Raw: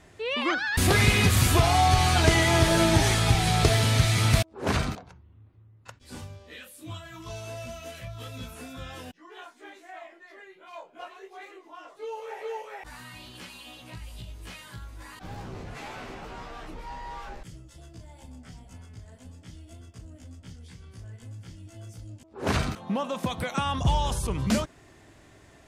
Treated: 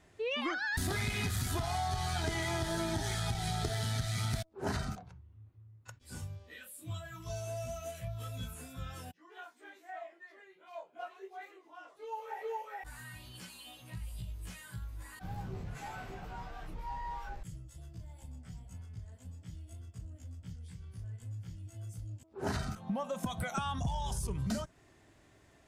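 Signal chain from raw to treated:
one-sided soft clipper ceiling −15 dBFS
noise reduction from a noise print of the clip's start 9 dB
downward compressor 6 to 1, threshold −32 dBFS, peak gain reduction 15 dB

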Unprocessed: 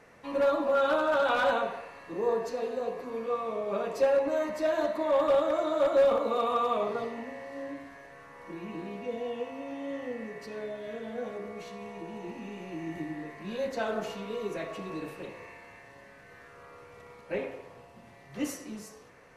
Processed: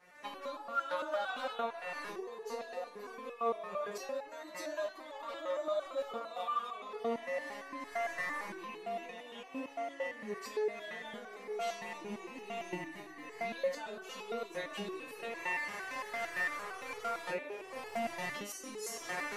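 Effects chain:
camcorder AGC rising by 51 dB per second
low-shelf EQ 440 Hz −11.5 dB
step-sequenced resonator 8.8 Hz 180–430 Hz
level +7 dB

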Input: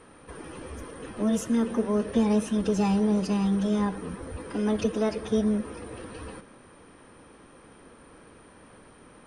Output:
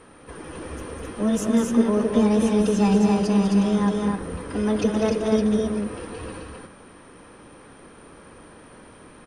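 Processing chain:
loudspeakers that aren't time-aligned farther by 68 metres −7 dB, 90 metres −3 dB
level +3 dB

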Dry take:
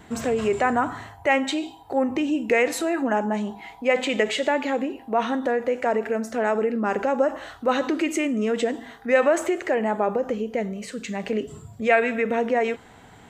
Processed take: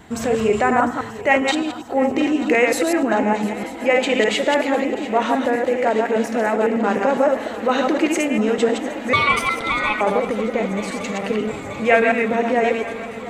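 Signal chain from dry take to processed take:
delay that plays each chunk backwards 101 ms, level −3 dB
0:09.13–0:10.01: ring modulation 1,700 Hz
feedback echo with a long and a short gap by turns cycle 935 ms, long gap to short 3 to 1, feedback 79%, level −17 dB
level +3 dB

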